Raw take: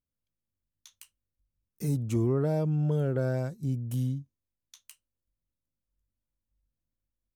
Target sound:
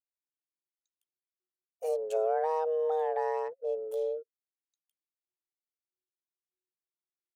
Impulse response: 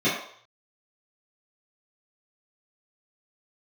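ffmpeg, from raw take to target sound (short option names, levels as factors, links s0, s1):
-af "afreqshift=320,anlmdn=1.58,volume=0.75"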